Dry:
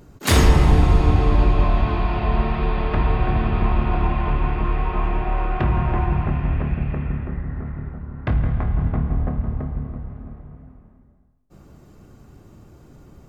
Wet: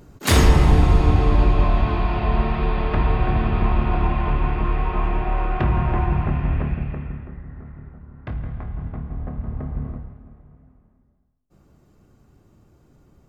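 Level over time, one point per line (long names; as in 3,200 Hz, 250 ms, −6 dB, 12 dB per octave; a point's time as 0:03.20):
0:06.62 0 dB
0:07.34 −9 dB
0:09.10 −9 dB
0:09.89 +1 dB
0:10.20 −8.5 dB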